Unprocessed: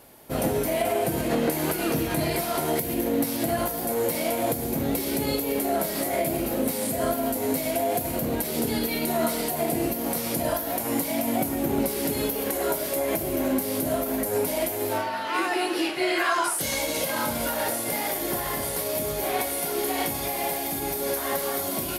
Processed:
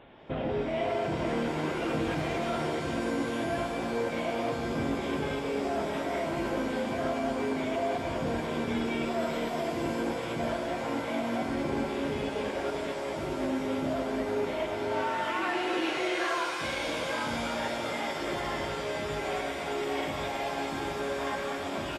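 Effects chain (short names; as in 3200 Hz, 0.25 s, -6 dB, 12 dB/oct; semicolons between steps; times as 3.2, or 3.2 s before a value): 12.7–13.41 negative-ratio compressor -30 dBFS, ratio -0.5; limiter -23.5 dBFS, peak gain reduction 11.5 dB; downsampling 8000 Hz; shimmer reverb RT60 3.6 s, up +7 st, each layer -2 dB, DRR 5.5 dB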